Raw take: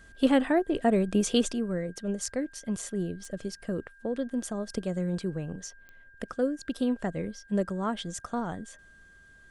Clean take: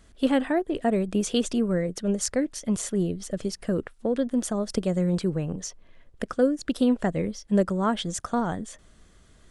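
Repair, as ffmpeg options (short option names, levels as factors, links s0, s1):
-af "adeclick=t=4,bandreject=f=1600:w=30,asetnsamples=n=441:p=0,asendcmd='1.52 volume volume 6dB',volume=1"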